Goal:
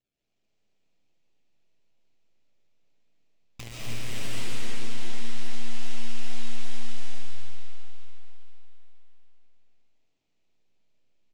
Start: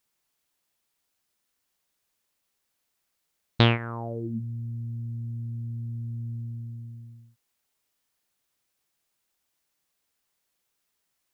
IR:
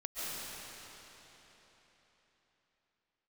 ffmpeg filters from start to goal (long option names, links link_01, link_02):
-filter_complex "[0:a]aeval=exprs='if(lt(val(0),0),0.447*val(0),val(0))':channel_layout=same,aresample=16000,acrusher=samples=13:mix=1:aa=0.000001:lfo=1:lforange=7.8:lforate=2.5,aresample=44100,acompressor=threshold=-43dB:ratio=3,highshelf=frequency=1900:width_type=q:width=1.5:gain=8.5,aeval=exprs='0.075*(cos(1*acos(clip(val(0)/0.075,-1,1)))-cos(1*PI/2))+0.0106*(cos(3*acos(clip(val(0)/0.075,-1,1)))-cos(3*PI/2))+0.00335*(cos(5*acos(clip(val(0)/0.075,-1,1)))-cos(5*PI/2))+0.0299*(cos(8*acos(clip(val(0)/0.075,-1,1)))-cos(8*PI/2))':channel_layout=same,asplit=2[link_01][link_02];[link_02]adelay=334,lowpass=frequency=2000:poles=1,volume=-13dB,asplit=2[link_03][link_04];[link_04]adelay=334,lowpass=frequency=2000:poles=1,volume=0.45,asplit=2[link_05][link_06];[link_06]adelay=334,lowpass=frequency=2000:poles=1,volume=0.45,asplit=2[link_07][link_08];[link_08]adelay=334,lowpass=frequency=2000:poles=1,volume=0.45[link_09];[link_01][link_03][link_05][link_07][link_09]amix=inputs=5:normalize=0[link_10];[1:a]atrim=start_sample=2205[link_11];[link_10][link_11]afir=irnorm=-1:irlink=0"